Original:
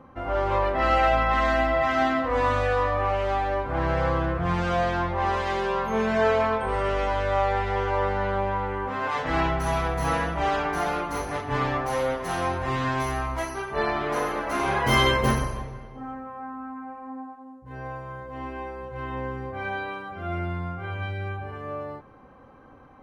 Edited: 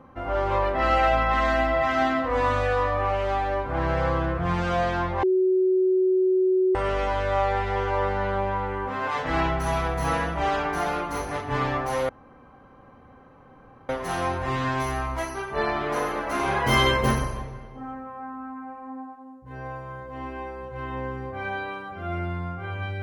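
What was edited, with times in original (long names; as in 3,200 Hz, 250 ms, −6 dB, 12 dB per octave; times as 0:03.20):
0:05.23–0:06.75: beep over 373 Hz −17.5 dBFS
0:12.09: splice in room tone 1.80 s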